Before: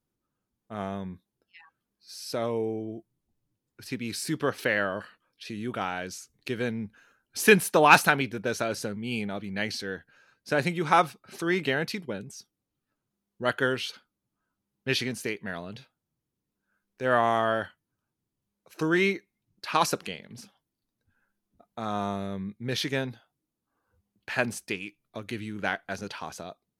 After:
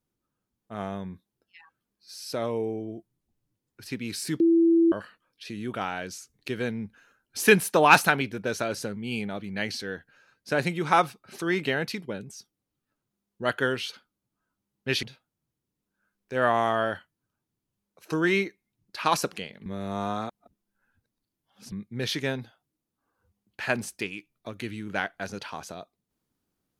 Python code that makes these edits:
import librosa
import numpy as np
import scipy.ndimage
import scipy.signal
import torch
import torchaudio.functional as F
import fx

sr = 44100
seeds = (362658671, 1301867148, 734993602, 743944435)

y = fx.edit(x, sr, fx.bleep(start_s=4.4, length_s=0.52, hz=333.0, db=-16.0),
    fx.cut(start_s=15.03, length_s=0.69),
    fx.reverse_span(start_s=20.35, length_s=2.06), tone=tone)